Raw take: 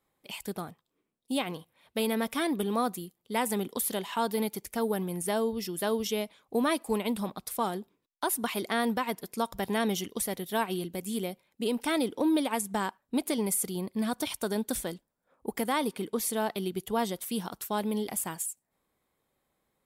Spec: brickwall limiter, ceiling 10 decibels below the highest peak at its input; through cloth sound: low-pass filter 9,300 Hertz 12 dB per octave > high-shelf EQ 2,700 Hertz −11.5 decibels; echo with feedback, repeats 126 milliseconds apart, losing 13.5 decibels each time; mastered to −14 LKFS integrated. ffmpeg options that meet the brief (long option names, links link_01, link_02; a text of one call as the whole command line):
ffmpeg -i in.wav -af "alimiter=level_in=2.5dB:limit=-24dB:level=0:latency=1,volume=-2.5dB,lowpass=9300,highshelf=frequency=2700:gain=-11.5,aecho=1:1:126|252:0.211|0.0444,volume=24dB" out.wav